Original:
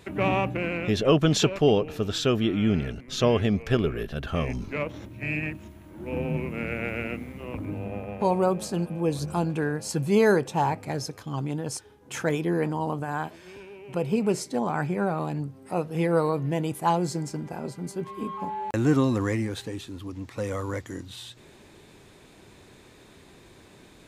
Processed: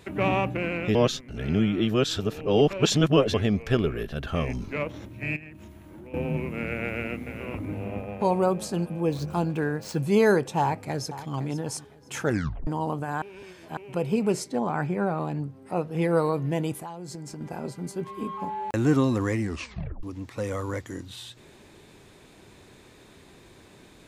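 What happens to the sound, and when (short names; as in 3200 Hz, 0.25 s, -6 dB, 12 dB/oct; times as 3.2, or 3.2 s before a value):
0.95–3.34 reverse
5.36–6.14 compressor 10:1, threshold -40 dBFS
6.84–7.59 echo throw 0.42 s, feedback 25%, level -8.5 dB
9.06–9.98 median filter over 5 samples
10.6–11.33 echo throw 0.51 s, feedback 25%, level -14 dB
12.23 tape stop 0.44 s
13.22–13.77 reverse
14.44–16.02 high shelf 4200 Hz -7 dB
16.73–17.41 compressor 10:1, threshold -34 dBFS
19.42 tape stop 0.61 s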